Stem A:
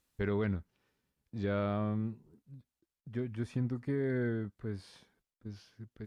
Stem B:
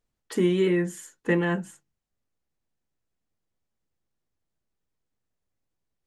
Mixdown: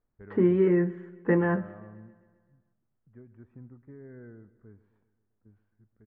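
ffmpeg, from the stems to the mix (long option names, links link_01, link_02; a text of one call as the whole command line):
ffmpeg -i stem1.wav -i stem2.wav -filter_complex "[0:a]volume=-14.5dB,asplit=2[link_01][link_02];[link_02]volume=-18.5dB[link_03];[1:a]volume=0.5dB,asplit=2[link_04][link_05];[link_05]volume=-21dB[link_06];[link_03][link_06]amix=inputs=2:normalize=0,aecho=0:1:131|262|393|524|655|786|917|1048|1179:1|0.59|0.348|0.205|0.121|0.0715|0.0422|0.0249|0.0147[link_07];[link_01][link_04][link_07]amix=inputs=3:normalize=0,lowpass=frequency=1700:width=0.5412,lowpass=frequency=1700:width=1.3066" out.wav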